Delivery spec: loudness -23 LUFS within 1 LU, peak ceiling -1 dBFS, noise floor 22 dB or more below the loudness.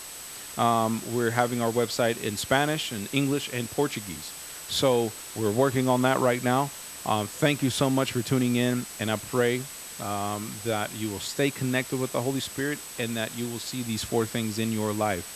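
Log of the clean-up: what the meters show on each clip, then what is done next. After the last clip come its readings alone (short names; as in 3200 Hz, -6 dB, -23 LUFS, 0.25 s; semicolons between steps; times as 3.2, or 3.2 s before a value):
steady tone 8000 Hz; tone level -43 dBFS; noise floor -41 dBFS; noise floor target -49 dBFS; loudness -27.0 LUFS; peak -7.0 dBFS; loudness target -23.0 LUFS
-> notch 8000 Hz, Q 30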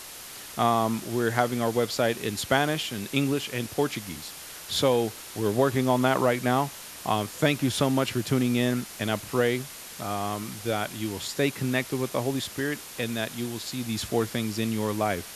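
steady tone none; noise floor -42 dBFS; noise floor target -49 dBFS
-> denoiser 7 dB, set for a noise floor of -42 dBFS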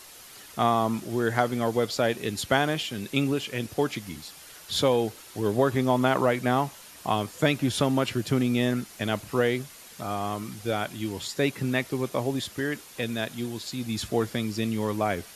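noise floor -48 dBFS; noise floor target -50 dBFS
-> denoiser 6 dB, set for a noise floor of -48 dBFS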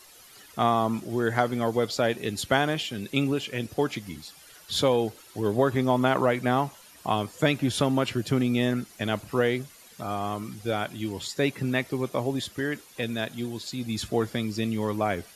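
noise floor -52 dBFS; loudness -27.5 LUFS; peak -7.0 dBFS; loudness target -23.0 LUFS
-> gain +4.5 dB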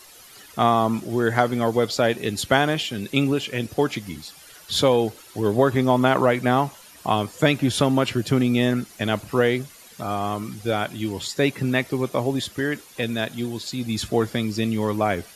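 loudness -23.0 LUFS; peak -2.5 dBFS; noise floor -47 dBFS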